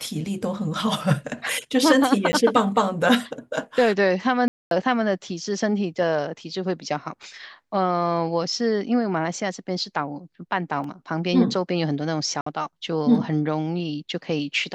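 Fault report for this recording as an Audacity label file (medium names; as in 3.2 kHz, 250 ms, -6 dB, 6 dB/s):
2.320000	2.330000	dropout 10 ms
4.480000	4.710000	dropout 232 ms
7.230000	7.230000	dropout 2.4 ms
10.840000	10.840000	dropout 2.7 ms
12.410000	12.460000	dropout 54 ms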